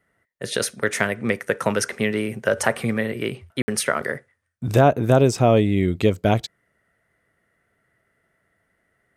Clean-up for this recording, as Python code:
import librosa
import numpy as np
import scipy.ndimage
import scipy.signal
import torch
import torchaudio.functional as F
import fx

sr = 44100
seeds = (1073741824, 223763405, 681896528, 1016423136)

y = fx.fix_ambience(x, sr, seeds[0], print_start_s=8.38, print_end_s=8.88, start_s=3.62, end_s=3.68)